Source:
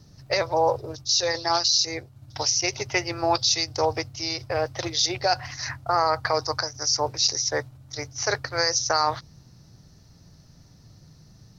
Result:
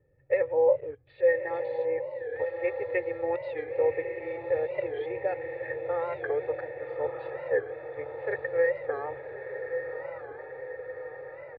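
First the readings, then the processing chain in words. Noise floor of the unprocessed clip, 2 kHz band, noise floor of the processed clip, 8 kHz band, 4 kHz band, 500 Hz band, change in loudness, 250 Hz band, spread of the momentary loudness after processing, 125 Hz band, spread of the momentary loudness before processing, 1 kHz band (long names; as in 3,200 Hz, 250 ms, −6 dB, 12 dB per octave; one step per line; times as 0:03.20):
−53 dBFS, −5.0 dB, −47 dBFS, can't be measured, below −35 dB, +1.5 dB, −6.5 dB, −8.5 dB, 14 LU, −14.0 dB, 8 LU, −13.0 dB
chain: adaptive Wiener filter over 9 samples
comb filter 2.3 ms, depth 74%
in parallel at −6 dB: bit reduction 6 bits
on the sum: formant resonators in series e
on a send: feedback delay with all-pass diffusion 1,187 ms, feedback 62%, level −7 dB
on the sum: wow of a warped record 45 rpm, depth 160 cents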